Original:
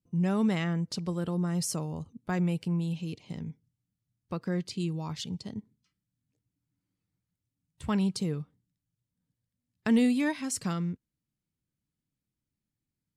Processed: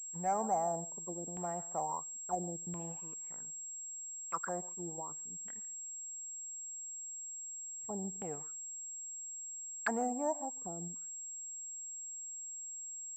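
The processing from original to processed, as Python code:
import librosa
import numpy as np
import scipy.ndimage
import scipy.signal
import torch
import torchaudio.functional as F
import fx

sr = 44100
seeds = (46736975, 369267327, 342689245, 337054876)

p1 = x + fx.echo_single(x, sr, ms=142, db=-17.0, dry=0)
p2 = fx.auto_wah(p1, sr, base_hz=750.0, top_hz=3000.0, q=9.0, full_db=-28.0, direction='down')
p3 = fx.leveller(p2, sr, passes=1)
p4 = fx.level_steps(p3, sr, step_db=19)
p5 = p3 + F.gain(torch.from_numpy(p4), -3.0).numpy()
p6 = fx.filter_lfo_lowpass(p5, sr, shape='saw_down', hz=0.73, low_hz=230.0, high_hz=2900.0, q=1.5)
p7 = fx.pwm(p6, sr, carrier_hz=7600.0)
y = F.gain(torch.from_numpy(p7), 7.0).numpy()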